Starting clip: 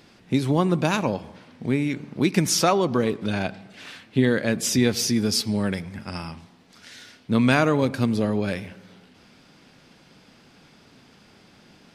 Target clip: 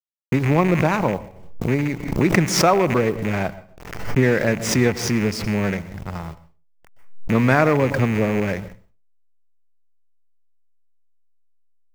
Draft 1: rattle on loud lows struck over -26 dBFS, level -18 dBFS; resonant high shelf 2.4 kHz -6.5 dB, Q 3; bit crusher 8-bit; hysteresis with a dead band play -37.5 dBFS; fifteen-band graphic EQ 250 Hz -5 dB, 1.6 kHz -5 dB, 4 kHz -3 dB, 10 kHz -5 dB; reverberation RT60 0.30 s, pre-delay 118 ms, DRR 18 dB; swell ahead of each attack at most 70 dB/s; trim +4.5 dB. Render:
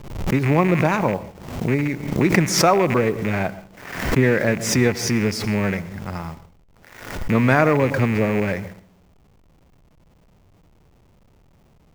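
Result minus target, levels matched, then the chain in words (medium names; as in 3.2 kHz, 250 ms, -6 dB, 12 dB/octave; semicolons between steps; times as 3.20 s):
hysteresis with a dead band: distortion -7 dB
rattle on loud lows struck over -26 dBFS, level -18 dBFS; resonant high shelf 2.4 kHz -6.5 dB, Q 3; bit crusher 8-bit; hysteresis with a dead band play -29.5 dBFS; fifteen-band graphic EQ 250 Hz -5 dB, 1.6 kHz -5 dB, 4 kHz -3 dB, 10 kHz -5 dB; reverberation RT60 0.30 s, pre-delay 118 ms, DRR 18 dB; swell ahead of each attack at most 70 dB/s; trim +4.5 dB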